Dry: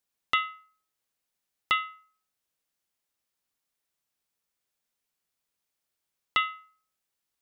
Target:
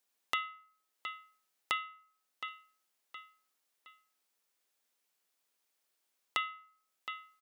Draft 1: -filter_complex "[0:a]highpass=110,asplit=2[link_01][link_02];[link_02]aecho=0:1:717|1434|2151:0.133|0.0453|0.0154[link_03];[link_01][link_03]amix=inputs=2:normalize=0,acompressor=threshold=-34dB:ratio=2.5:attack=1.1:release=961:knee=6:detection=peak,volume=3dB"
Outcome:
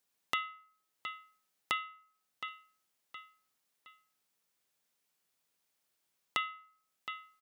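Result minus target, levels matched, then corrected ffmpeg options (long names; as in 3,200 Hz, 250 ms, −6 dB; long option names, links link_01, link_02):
125 Hz band +6.5 dB
-filter_complex "[0:a]highpass=270,asplit=2[link_01][link_02];[link_02]aecho=0:1:717|1434|2151:0.133|0.0453|0.0154[link_03];[link_01][link_03]amix=inputs=2:normalize=0,acompressor=threshold=-34dB:ratio=2.5:attack=1.1:release=961:knee=6:detection=peak,volume=3dB"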